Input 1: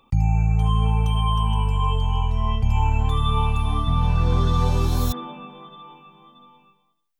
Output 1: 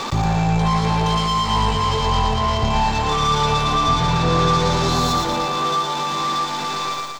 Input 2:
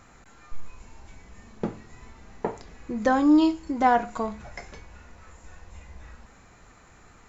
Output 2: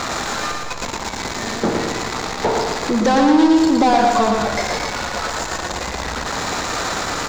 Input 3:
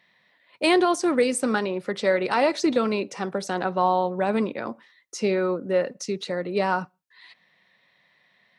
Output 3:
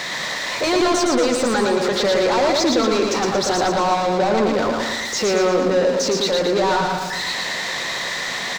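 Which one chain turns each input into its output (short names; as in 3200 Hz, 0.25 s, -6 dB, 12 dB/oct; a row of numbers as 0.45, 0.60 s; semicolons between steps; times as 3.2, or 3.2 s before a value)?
zero-crossing step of -34 dBFS; overdrive pedal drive 30 dB, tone 1000 Hz, clips at -7 dBFS; band shelf 5300 Hz +10 dB 1.3 oct; feedback echo 0.115 s, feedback 53%, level -3.5 dB; match loudness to -19 LUFS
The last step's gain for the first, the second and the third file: -3.0, -0.5, -4.0 dB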